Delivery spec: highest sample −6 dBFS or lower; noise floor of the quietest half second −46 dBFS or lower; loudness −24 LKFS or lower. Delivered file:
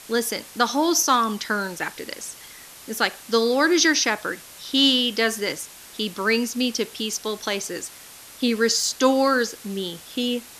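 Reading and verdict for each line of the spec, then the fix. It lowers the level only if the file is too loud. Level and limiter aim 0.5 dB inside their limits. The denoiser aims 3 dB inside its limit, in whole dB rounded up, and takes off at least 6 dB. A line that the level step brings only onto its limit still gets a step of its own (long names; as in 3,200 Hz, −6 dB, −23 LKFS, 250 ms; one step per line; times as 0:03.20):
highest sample −4.0 dBFS: out of spec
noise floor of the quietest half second −44 dBFS: out of spec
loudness −22.0 LKFS: out of spec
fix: level −2.5 dB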